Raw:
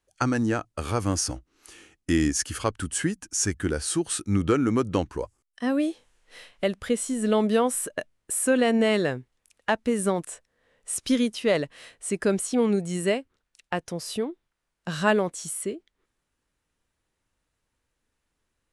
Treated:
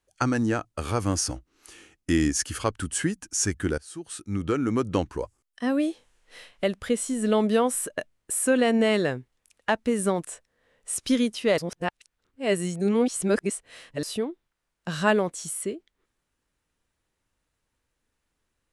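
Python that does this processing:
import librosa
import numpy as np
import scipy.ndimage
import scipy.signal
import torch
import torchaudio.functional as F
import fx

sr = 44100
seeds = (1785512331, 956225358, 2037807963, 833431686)

y = fx.edit(x, sr, fx.fade_in_from(start_s=3.78, length_s=1.19, floor_db=-21.0),
    fx.reverse_span(start_s=11.58, length_s=2.45), tone=tone)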